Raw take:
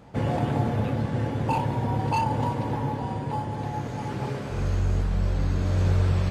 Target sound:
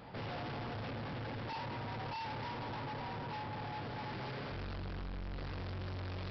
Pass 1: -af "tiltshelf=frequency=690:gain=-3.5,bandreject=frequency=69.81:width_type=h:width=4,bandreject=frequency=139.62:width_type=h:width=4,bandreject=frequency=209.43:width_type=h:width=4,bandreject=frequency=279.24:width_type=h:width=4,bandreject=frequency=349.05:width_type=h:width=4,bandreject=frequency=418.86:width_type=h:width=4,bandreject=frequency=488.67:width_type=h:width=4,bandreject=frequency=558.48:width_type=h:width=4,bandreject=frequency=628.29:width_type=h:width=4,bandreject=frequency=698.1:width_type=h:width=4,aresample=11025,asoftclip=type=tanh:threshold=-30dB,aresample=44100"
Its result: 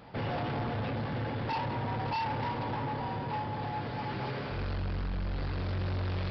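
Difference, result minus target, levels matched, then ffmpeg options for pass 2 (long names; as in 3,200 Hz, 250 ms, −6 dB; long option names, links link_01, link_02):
soft clipping: distortion −5 dB
-af "tiltshelf=frequency=690:gain=-3.5,bandreject=frequency=69.81:width_type=h:width=4,bandreject=frequency=139.62:width_type=h:width=4,bandreject=frequency=209.43:width_type=h:width=4,bandreject=frequency=279.24:width_type=h:width=4,bandreject=frequency=349.05:width_type=h:width=4,bandreject=frequency=418.86:width_type=h:width=4,bandreject=frequency=488.67:width_type=h:width=4,bandreject=frequency=558.48:width_type=h:width=4,bandreject=frequency=628.29:width_type=h:width=4,bandreject=frequency=698.1:width_type=h:width=4,aresample=11025,asoftclip=type=tanh:threshold=-40.5dB,aresample=44100"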